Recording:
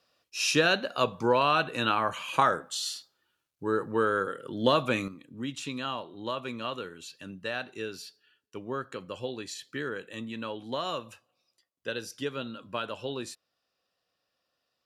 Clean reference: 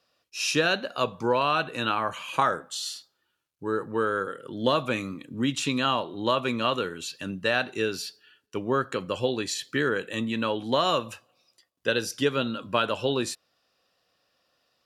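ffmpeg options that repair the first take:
ffmpeg -i in.wav -af "asetnsamples=nb_out_samples=441:pad=0,asendcmd='5.08 volume volume 9dB',volume=0dB" out.wav

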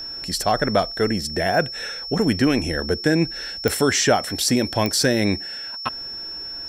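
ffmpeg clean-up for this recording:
ffmpeg -i in.wav -af "adeclick=threshold=4,bandreject=frequency=5400:width=30" out.wav

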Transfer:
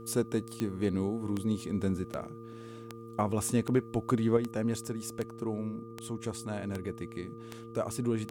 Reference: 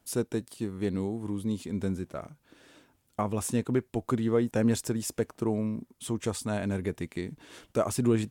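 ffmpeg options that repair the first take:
ffmpeg -i in.wav -af "adeclick=threshold=4,bandreject=frequency=114.6:width_type=h:width=4,bandreject=frequency=229.2:width_type=h:width=4,bandreject=frequency=343.8:width_type=h:width=4,bandreject=frequency=458.4:width_type=h:width=4,bandreject=frequency=1200:width=30,asetnsamples=nb_out_samples=441:pad=0,asendcmd='4.37 volume volume 6dB',volume=0dB" out.wav

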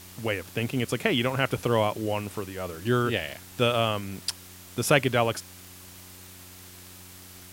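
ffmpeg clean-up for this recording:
ffmpeg -i in.wav -af "adeclick=threshold=4,bandreject=frequency=91.4:width_type=h:width=4,bandreject=frequency=182.8:width_type=h:width=4,bandreject=frequency=274.2:width_type=h:width=4,bandreject=frequency=365.6:width_type=h:width=4,afwtdn=0.0045" out.wav

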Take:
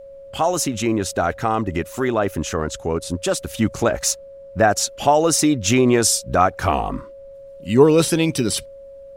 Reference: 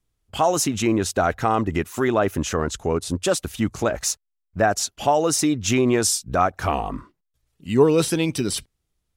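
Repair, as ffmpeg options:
ffmpeg -i in.wav -af "bandreject=frequency=550:width=30,agate=range=-21dB:threshold=-32dB,asetnsamples=nb_out_samples=441:pad=0,asendcmd='3.49 volume volume -3.5dB',volume=0dB" out.wav

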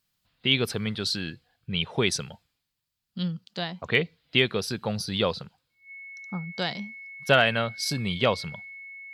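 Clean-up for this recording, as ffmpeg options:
ffmpeg -i in.wav -af "bandreject=frequency=2200:width=30" out.wav

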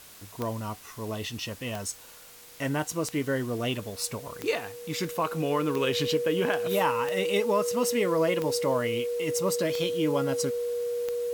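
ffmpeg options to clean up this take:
ffmpeg -i in.wav -af "adeclick=threshold=4,bandreject=frequency=480:width=30,afwtdn=0.0035" out.wav

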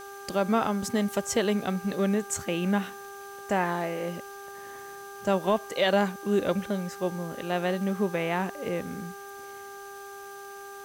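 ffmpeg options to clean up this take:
ffmpeg -i in.wav -af "adeclick=threshold=4,bandreject=frequency=398.3:width_type=h:width=4,bandreject=frequency=796.6:width_type=h:width=4,bandreject=frequency=1194.9:width_type=h:width=4,bandreject=frequency=1593.2:width_type=h:width=4,bandreject=frequency=6100:width=30,afwtdn=0.0025" out.wav

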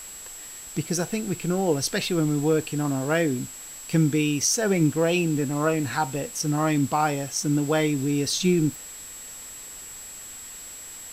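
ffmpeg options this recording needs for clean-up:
ffmpeg -i in.wav -af "bandreject=frequency=7700:width=30,afwtdn=0.0063" out.wav

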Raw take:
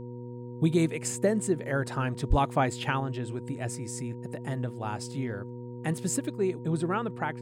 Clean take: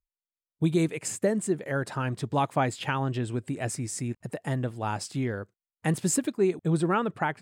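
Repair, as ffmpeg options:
ffmpeg -i in.wav -filter_complex "[0:a]bandreject=frequency=121.8:width_type=h:width=4,bandreject=frequency=243.6:width_type=h:width=4,bandreject=frequency=365.4:width_type=h:width=4,bandreject=frequency=487.2:width_type=h:width=4,bandreject=frequency=940:width=30,asplit=3[link_01][link_02][link_03];[link_01]afade=type=out:start_time=2.29:duration=0.02[link_04];[link_02]highpass=frequency=140:width=0.5412,highpass=frequency=140:width=1.3066,afade=type=in:start_time=2.29:duration=0.02,afade=type=out:start_time=2.41:duration=0.02[link_05];[link_03]afade=type=in:start_time=2.41:duration=0.02[link_06];[link_04][link_05][link_06]amix=inputs=3:normalize=0,asetnsamples=nb_out_samples=441:pad=0,asendcmd='3 volume volume 4dB',volume=0dB" out.wav

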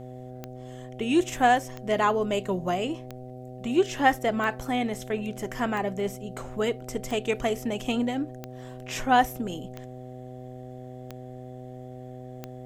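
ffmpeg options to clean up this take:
ffmpeg -i in.wav -af "adeclick=threshold=4,bandreject=frequency=126.5:width_type=h:width=4,bandreject=frequency=253:width_type=h:width=4,bandreject=frequency=379.5:width_type=h:width=4,bandreject=frequency=506:width_type=h:width=4,bandreject=frequency=632.5:width_type=h:width=4,bandreject=frequency=759:width_type=h:width=4" out.wav

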